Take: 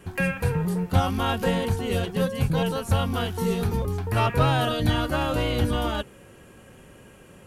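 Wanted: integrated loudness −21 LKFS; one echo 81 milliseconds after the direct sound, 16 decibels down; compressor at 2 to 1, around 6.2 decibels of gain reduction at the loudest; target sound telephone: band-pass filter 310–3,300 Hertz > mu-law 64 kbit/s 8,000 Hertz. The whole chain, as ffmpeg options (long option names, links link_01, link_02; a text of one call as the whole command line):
ffmpeg -i in.wav -af "acompressor=threshold=-28dB:ratio=2,highpass=310,lowpass=3300,aecho=1:1:81:0.158,volume=12dB" -ar 8000 -c:a pcm_mulaw out.wav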